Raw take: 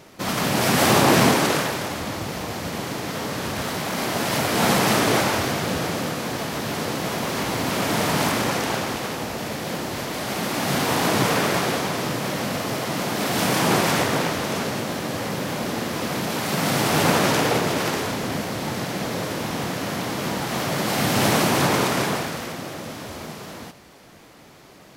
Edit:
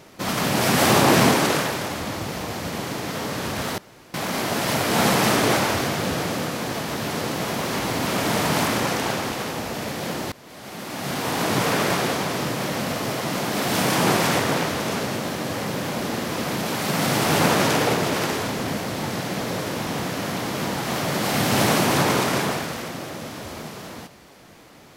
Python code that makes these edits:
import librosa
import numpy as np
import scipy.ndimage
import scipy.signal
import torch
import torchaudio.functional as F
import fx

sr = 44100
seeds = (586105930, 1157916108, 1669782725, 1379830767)

y = fx.edit(x, sr, fx.insert_room_tone(at_s=3.78, length_s=0.36),
    fx.fade_in_from(start_s=9.96, length_s=1.53, floor_db=-21.5), tone=tone)